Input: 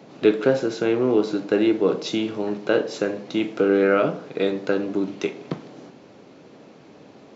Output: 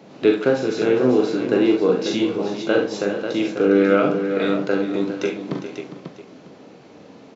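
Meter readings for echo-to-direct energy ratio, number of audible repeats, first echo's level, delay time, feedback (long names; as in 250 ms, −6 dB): −1.0 dB, 5, −5.5 dB, 40 ms, repeats not evenly spaced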